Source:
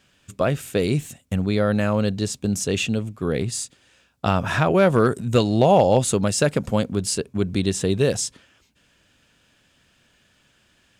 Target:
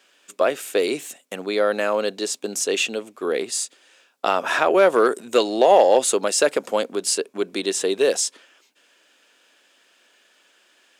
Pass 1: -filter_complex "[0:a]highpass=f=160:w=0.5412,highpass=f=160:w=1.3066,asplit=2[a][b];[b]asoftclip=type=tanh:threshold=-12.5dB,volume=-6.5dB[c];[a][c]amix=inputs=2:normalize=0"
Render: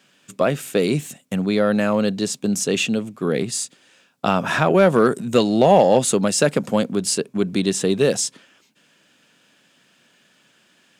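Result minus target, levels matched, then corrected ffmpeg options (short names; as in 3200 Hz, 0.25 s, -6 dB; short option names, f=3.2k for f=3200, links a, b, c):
125 Hz band +19.5 dB
-filter_complex "[0:a]highpass=f=340:w=0.5412,highpass=f=340:w=1.3066,asplit=2[a][b];[b]asoftclip=type=tanh:threshold=-12.5dB,volume=-6.5dB[c];[a][c]amix=inputs=2:normalize=0"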